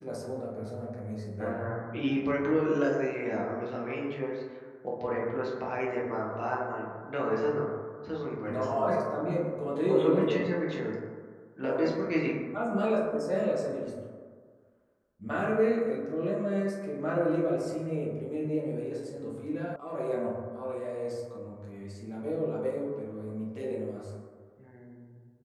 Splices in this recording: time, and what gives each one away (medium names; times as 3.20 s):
19.76 s: sound stops dead